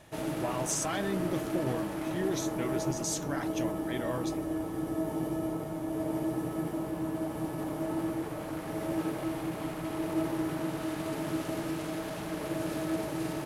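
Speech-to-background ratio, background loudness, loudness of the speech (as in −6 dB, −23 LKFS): −1.0 dB, −34.5 LKFS, −35.5 LKFS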